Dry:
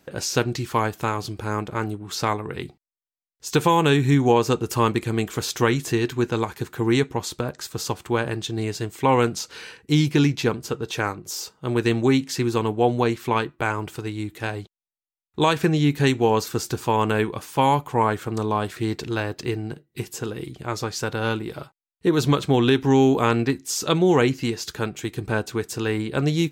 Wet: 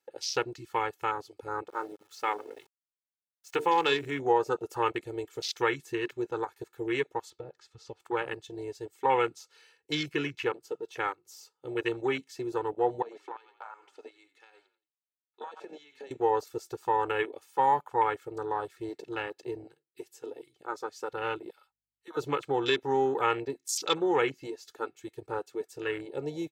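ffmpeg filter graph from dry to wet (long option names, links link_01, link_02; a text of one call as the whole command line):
ffmpeg -i in.wav -filter_complex "[0:a]asettb=1/sr,asplit=3[link_01][link_02][link_03];[link_01]atrim=end=1.694[link_04];[link_02]atrim=start=1.69:end=4.19,asetpts=PTS-STARTPTS,afade=type=in:duration=0.004:curve=qsin,afade=type=out:start_time=2.496:duration=0.004:curve=qsin,equalizer=frequency=140:width_type=o:width=0.46:gain=-3.5,bandreject=frequency=50:width_type=h:width=6,bandreject=frequency=100:width_type=h:width=6,bandreject=frequency=150:width_type=h:width=6,bandreject=frequency=200:width_type=h:width=6,bandreject=frequency=250:width_type=h:width=6,bandreject=frequency=300:width_type=h:width=6,bandreject=frequency=350:width_type=h:width=6,bandreject=frequency=400:width_type=h:width=6,bandreject=frequency=450:width_type=h:width=6,aeval=exprs='val(0)*gte(abs(val(0)),0.0178)':channel_layout=same[link_05];[link_03]atrim=start=4.186[link_06];[link_04][link_05]acrossfade=duration=0.004:curve1=hsin:curve2=qsin[link_07];[link_07][link_06]acrossfade=duration=0.004:curve1=qsin:curve2=hsin,asettb=1/sr,asplit=3[link_08][link_09][link_10];[link_08]atrim=end=7.304[link_11];[link_09]atrim=start=7.3:end=8,asetpts=PTS-STARTPTS,afade=type=in:duration=0.004:curve=qsin,afade=type=out:start_time=0.696:duration=0.004:curve=qsin,lowpass=4500,lowshelf=frequency=140:gain=9,acompressor=threshold=-26dB:ratio=2:attack=3.2:release=140:knee=1:detection=peak[link_12];[link_10]atrim=start=7.996[link_13];[link_11][link_12]acrossfade=duration=0.004:curve1=hsin:curve2=qsin[link_14];[link_14][link_13]acrossfade=duration=0.004:curve1=qsin:curve2=hsin,asettb=1/sr,asplit=3[link_15][link_16][link_17];[link_15]atrim=end=13.024[link_18];[link_16]atrim=start=13.02:end=16.11,asetpts=PTS-STARTPTS,afade=type=in:duration=0.004:curve=qsin,afade=type=out:start_time=3.086:duration=0.004:curve=qsin,highpass=460,lowpass=6000,asplit=4[link_19][link_20][link_21][link_22];[link_20]adelay=87,afreqshift=-31,volume=-14dB[link_23];[link_21]adelay=174,afreqshift=-62,volume=-23.1dB[link_24];[link_22]adelay=261,afreqshift=-93,volume=-32.2dB[link_25];[link_19][link_23][link_24][link_25]amix=inputs=4:normalize=0,atrim=end_sample=136269,acompressor=threshold=-28dB:ratio=20:attack=3.2:release=140:knee=1:detection=peak[link_26];[link_17]atrim=start=16.106[link_27];[link_18][link_26]acrossfade=duration=0.004:curve1=hsin:curve2=qsin[link_28];[link_28][link_27]acrossfade=duration=0.004:curve1=qsin:curve2=hsin,asettb=1/sr,asplit=3[link_29][link_30][link_31];[link_29]atrim=end=21.504[link_32];[link_30]atrim=start=21.5:end=22.17,asetpts=PTS-STARTPTS,afade=type=in:duration=0.004:curve=qsin,afade=type=out:start_time=0.666:duration=0.004:curve=qsin,highpass=920,aeval=exprs='val(0)+0.000891*(sin(2*PI*50*n/s)+sin(2*PI*2*50*n/s)/2+sin(2*PI*3*50*n/s)/3+sin(2*PI*4*50*n/s)/4+sin(2*PI*5*50*n/s)/5)':channel_layout=same[link_33];[link_31]atrim=start=22.166[link_34];[link_32][link_33]acrossfade=duration=0.004:curve1=hsin:curve2=qsin[link_35];[link_35][link_34]acrossfade=duration=0.004:curve1=qsin:curve2=hsin,highpass=frequency=820:poles=1,aecho=1:1:2.3:0.96,afwtdn=0.0398,volume=-5.5dB" out.wav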